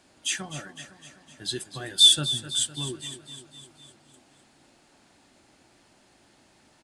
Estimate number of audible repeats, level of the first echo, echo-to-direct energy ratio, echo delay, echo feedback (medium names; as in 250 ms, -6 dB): 5, -13.0 dB, -11.0 dB, 254 ms, 60%